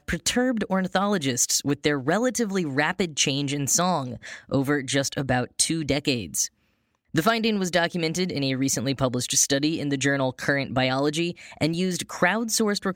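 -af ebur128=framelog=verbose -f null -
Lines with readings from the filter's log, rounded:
Integrated loudness:
  I:         -23.9 LUFS
  Threshold: -34.0 LUFS
Loudness range:
  LRA:         1.7 LU
  Threshold: -44.1 LUFS
  LRA low:   -25.0 LUFS
  LRA high:  -23.3 LUFS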